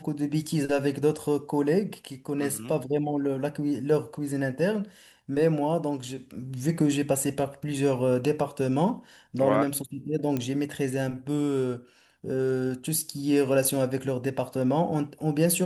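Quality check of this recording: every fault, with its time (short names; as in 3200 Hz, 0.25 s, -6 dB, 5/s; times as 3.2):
10.37 pop -16 dBFS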